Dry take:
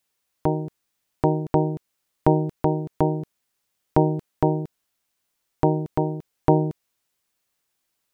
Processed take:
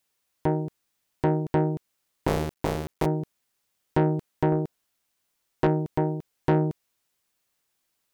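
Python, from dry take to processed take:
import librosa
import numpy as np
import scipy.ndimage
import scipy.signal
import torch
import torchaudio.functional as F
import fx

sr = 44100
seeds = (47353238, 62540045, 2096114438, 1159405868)

y = fx.cycle_switch(x, sr, every=2, mode='muted', at=(2.27, 3.06))
y = fx.dynamic_eq(y, sr, hz=550.0, q=0.71, threshold_db=-38.0, ratio=4.0, max_db=5, at=(4.51, 5.67))
y = 10.0 ** (-14.0 / 20.0) * np.tanh(y / 10.0 ** (-14.0 / 20.0))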